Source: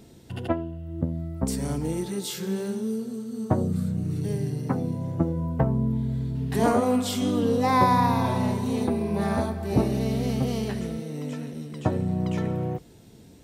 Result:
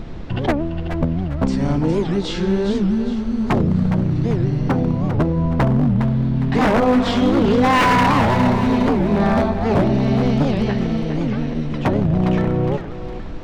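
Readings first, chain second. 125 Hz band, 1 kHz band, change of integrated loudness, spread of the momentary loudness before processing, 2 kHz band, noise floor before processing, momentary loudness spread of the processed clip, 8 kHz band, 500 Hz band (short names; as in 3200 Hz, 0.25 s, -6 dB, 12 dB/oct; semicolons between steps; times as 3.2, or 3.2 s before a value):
+8.0 dB, +6.5 dB, +8.0 dB, 10 LU, +12.5 dB, -50 dBFS, 7 LU, n/a, +8.0 dB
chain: HPF 86 Hz 12 dB/oct; notch 440 Hz, Q 12; in parallel at -1 dB: compressor 12:1, threshold -32 dBFS, peak gain reduction 17.5 dB; on the sum: added noise brown -37 dBFS; Gaussian blur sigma 2 samples; wavefolder -17 dBFS; on a send: thinning echo 0.409 s, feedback 43%, level -8 dB; on the sum: record warp 78 rpm, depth 250 cents; gain +7.5 dB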